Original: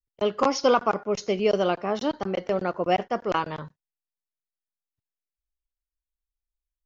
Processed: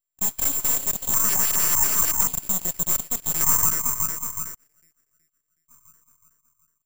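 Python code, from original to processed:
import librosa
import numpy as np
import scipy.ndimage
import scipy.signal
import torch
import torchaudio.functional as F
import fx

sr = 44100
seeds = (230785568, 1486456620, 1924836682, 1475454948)

y = scipy.signal.sosfilt(scipy.signal.butter(4, 220.0, 'highpass', fs=sr, output='sos'), x)
y = fx.peak_eq(y, sr, hz=2400.0, db=-8.5, octaves=2.6)
y = fx.echo_banded(y, sr, ms=370, feedback_pct=52, hz=660.0, wet_db=-11.0)
y = fx.fold_sine(y, sr, drive_db=18, ceiling_db=-12.0)
y = fx.filter_lfo_highpass(y, sr, shape='square', hz=0.44, low_hz=490.0, high_hz=2200.0, q=3.0)
y = np.abs(y)
y = (np.kron(scipy.signal.resample_poly(y, 1, 6), np.eye(6)[0]) * 6)[:len(y)]
y = F.gain(torch.from_numpy(y), -15.5).numpy()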